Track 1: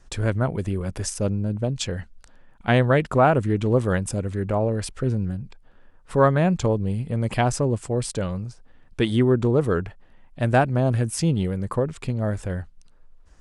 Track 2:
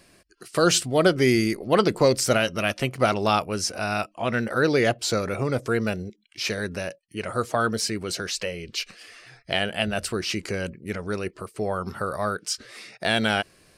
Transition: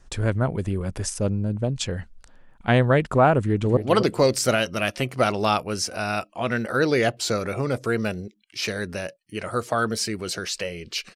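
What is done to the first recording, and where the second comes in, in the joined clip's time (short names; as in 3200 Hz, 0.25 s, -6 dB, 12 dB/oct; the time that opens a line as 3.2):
track 1
3.38–3.77 echo throw 0.26 s, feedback 25%, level -9.5 dB
3.77 switch to track 2 from 1.59 s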